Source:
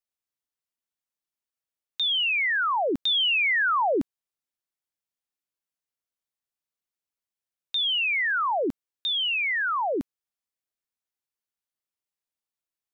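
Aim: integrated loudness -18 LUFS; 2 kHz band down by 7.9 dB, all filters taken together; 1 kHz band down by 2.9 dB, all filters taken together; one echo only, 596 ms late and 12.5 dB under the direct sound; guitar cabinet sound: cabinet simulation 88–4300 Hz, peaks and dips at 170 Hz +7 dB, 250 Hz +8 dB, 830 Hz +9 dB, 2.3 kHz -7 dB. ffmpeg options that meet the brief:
-af "highpass=88,equalizer=f=170:t=q:w=4:g=7,equalizer=f=250:t=q:w=4:g=8,equalizer=f=830:t=q:w=4:g=9,equalizer=f=2300:t=q:w=4:g=-7,lowpass=f=4300:w=0.5412,lowpass=f=4300:w=1.3066,equalizer=f=1000:t=o:g=-8.5,equalizer=f=2000:t=o:g=-4.5,aecho=1:1:596:0.237,volume=3.16"

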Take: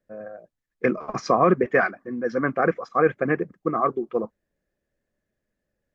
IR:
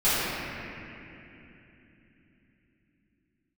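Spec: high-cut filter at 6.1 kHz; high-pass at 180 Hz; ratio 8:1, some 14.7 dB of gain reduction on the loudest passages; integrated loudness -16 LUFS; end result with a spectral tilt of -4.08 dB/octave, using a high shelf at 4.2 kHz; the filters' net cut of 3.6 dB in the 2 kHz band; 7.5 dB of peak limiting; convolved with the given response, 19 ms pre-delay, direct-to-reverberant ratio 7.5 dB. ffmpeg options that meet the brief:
-filter_complex "[0:a]highpass=180,lowpass=6100,equalizer=f=2000:t=o:g=-6,highshelf=f=4200:g=6.5,acompressor=threshold=0.0316:ratio=8,alimiter=level_in=1.06:limit=0.0631:level=0:latency=1,volume=0.944,asplit=2[s0][s1];[1:a]atrim=start_sample=2205,adelay=19[s2];[s1][s2]afir=irnorm=-1:irlink=0,volume=0.0562[s3];[s0][s3]amix=inputs=2:normalize=0,volume=10.6"

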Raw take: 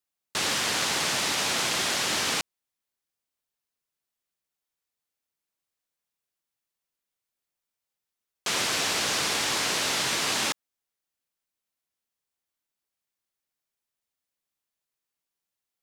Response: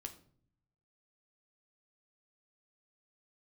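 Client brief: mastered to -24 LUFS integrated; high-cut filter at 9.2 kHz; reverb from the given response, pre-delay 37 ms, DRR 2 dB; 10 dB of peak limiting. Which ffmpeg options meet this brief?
-filter_complex "[0:a]lowpass=9200,alimiter=limit=0.0631:level=0:latency=1,asplit=2[s0][s1];[1:a]atrim=start_sample=2205,adelay=37[s2];[s1][s2]afir=irnorm=-1:irlink=0,volume=1.26[s3];[s0][s3]amix=inputs=2:normalize=0,volume=1.88"

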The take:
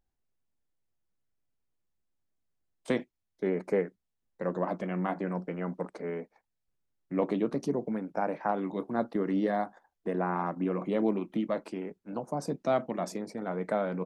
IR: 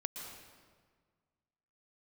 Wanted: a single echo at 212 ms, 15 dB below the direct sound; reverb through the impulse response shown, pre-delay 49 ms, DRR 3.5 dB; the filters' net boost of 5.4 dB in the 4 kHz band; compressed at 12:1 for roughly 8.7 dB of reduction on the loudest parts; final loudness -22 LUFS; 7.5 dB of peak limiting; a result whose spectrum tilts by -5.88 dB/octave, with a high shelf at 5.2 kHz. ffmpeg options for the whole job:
-filter_complex "[0:a]equalizer=f=4000:t=o:g=3.5,highshelf=f=5200:g=8,acompressor=threshold=0.0282:ratio=12,alimiter=level_in=1.5:limit=0.0631:level=0:latency=1,volume=0.668,aecho=1:1:212:0.178,asplit=2[s0][s1];[1:a]atrim=start_sample=2205,adelay=49[s2];[s1][s2]afir=irnorm=-1:irlink=0,volume=0.668[s3];[s0][s3]amix=inputs=2:normalize=0,volume=5.96"

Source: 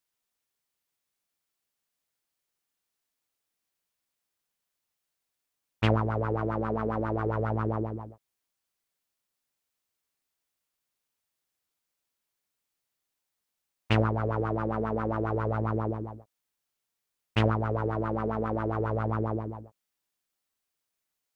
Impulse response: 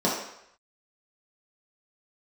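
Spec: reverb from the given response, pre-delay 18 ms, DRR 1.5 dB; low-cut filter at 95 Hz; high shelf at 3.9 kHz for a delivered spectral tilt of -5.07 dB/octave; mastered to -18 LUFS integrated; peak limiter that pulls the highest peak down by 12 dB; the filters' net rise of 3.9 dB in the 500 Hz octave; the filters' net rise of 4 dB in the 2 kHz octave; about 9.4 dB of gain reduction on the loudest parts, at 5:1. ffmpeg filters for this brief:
-filter_complex "[0:a]highpass=95,equalizer=f=500:t=o:g=4.5,equalizer=f=2000:t=o:g=7,highshelf=f=3900:g=-7,acompressor=threshold=0.0447:ratio=5,alimiter=limit=0.0891:level=0:latency=1,asplit=2[s0][s1];[1:a]atrim=start_sample=2205,adelay=18[s2];[s1][s2]afir=irnorm=-1:irlink=0,volume=0.158[s3];[s0][s3]amix=inputs=2:normalize=0,volume=3.35"

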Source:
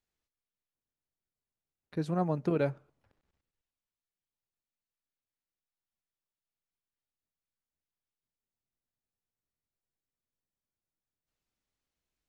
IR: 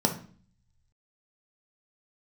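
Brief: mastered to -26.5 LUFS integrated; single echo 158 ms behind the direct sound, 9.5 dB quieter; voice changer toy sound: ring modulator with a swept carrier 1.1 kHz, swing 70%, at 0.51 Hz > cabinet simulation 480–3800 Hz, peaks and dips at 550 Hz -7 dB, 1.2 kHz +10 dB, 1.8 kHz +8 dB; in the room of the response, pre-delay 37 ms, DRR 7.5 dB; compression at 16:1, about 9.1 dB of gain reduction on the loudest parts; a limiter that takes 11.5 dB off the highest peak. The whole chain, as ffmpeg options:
-filter_complex "[0:a]acompressor=threshold=0.0224:ratio=16,alimiter=level_in=3.98:limit=0.0631:level=0:latency=1,volume=0.251,aecho=1:1:158:0.335,asplit=2[s0][s1];[1:a]atrim=start_sample=2205,adelay=37[s2];[s1][s2]afir=irnorm=-1:irlink=0,volume=0.119[s3];[s0][s3]amix=inputs=2:normalize=0,aeval=exprs='val(0)*sin(2*PI*1100*n/s+1100*0.7/0.51*sin(2*PI*0.51*n/s))':c=same,highpass=480,equalizer=f=550:t=q:w=4:g=-7,equalizer=f=1200:t=q:w=4:g=10,equalizer=f=1800:t=q:w=4:g=8,lowpass=f=3800:w=0.5412,lowpass=f=3800:w=1.3066,volume=2.99"

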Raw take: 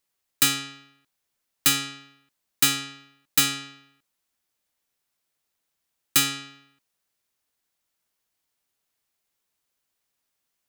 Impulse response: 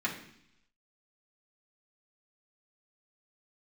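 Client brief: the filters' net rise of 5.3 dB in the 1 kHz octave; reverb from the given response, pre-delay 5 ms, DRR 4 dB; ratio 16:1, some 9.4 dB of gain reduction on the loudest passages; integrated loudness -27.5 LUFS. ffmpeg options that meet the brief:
-filter_complex "[0:a]equalizer=f=1000:t=o:g=8,acompressor=threshold=0.0708:ratio=16,asplit=2[s0][s1];[1:a]atrim=start_sample=2205,adelay=5[s2];[s1][s2]afir=irnorm=-1:irlink=0,volume=0.282[s3];[s0][s3]amix=inputs=2:normalize=0,volume=1.33"

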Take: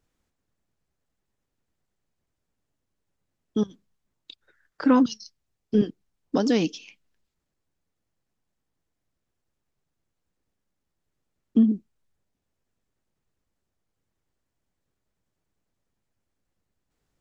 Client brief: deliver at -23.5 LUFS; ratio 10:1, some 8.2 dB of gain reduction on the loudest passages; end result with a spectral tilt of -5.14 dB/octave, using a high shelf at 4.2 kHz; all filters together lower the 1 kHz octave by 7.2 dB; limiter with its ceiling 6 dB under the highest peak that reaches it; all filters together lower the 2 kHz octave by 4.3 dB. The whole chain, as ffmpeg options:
-af "equalizer=f=1000:t=o:g=-8,equalizer=f=2000:t=o:g=-4.5,highshelf=f=4200:g=6.5,acompressor=threshold=0.0708:ratio=10,volume=3.16,alimiter=limit=0.299:level=0:latency=1"

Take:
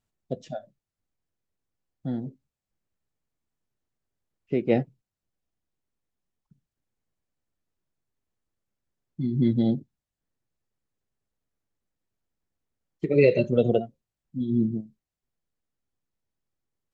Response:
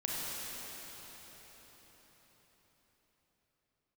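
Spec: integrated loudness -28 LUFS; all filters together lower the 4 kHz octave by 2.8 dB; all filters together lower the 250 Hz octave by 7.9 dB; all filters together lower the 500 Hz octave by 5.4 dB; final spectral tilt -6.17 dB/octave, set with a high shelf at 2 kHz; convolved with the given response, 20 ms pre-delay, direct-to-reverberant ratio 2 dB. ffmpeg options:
-filter_complex "[0:a]equalizer=f=250:t=o:g=-8.5,equalizer=f=500:t=o:g=-4,highshelf=f=2000:g=5,equalizer=f=4000:t=o:g=-8.5,asplit=2[s0][s1];[1:a]atrim=start_sample=2205,adelay=20[s2];[s1][s2]afir=irnorm=-1:irlink=0,volume=0.422[s3];[s0][s3]amix=inputs=2:normalize=0,volume=1.58"

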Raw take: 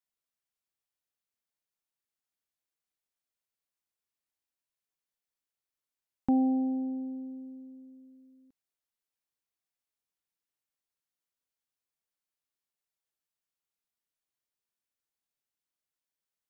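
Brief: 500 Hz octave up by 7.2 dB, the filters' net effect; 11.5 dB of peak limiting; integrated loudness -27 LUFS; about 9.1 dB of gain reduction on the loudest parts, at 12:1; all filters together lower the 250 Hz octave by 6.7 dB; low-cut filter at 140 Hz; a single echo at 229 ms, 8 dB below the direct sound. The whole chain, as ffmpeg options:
-af "highpass=140,equalizer=f=250:t=o:g=-8.5,equalizer=f=500:t=o:g=9,acompressor=threshold=0.0224:ratio=12,alimiter=level_in=2.82:limit=0.0631:level=0:latency=1,volume=0.355,aecho=1:1:229:0.398,volume=6.68"

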